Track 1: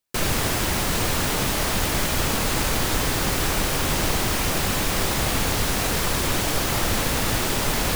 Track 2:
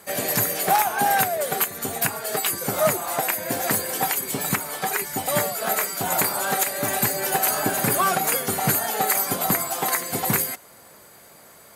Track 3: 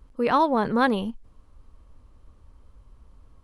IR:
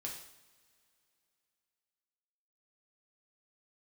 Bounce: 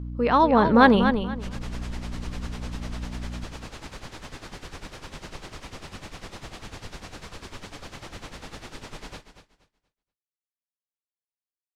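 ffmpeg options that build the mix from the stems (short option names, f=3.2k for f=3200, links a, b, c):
-filter_complex "[0:a]tremolo=f=10:d=0.92,adelay=1250,volume=-13.5dB,asplit=2[a][b];[b]volume=-11dB[c];[2:a]dynaudnorm=f=150:g=7:m=12dB,aeval=exprs='val(0)+0.0251*(sin(2*PI*60*n/s)+sin(2*PI*2*60*n/s)/2+sin(2*PI*3*60*n/s)/3+sin(2*PI*4*60*n/s)/4+sin(2*PI*5*60*n/s)/5)':c=same,volume=-0.5dB,asplit=2[d][e];[e]volume=-8.5dB[f];[c][f]amix=inputs=2:normalize=0,aecho=0:1:238|476|714|952:1|0.23|0.0529|0.0122[g];[a][d][g]amix=inputs=3:normalize=0,lowpass=6k"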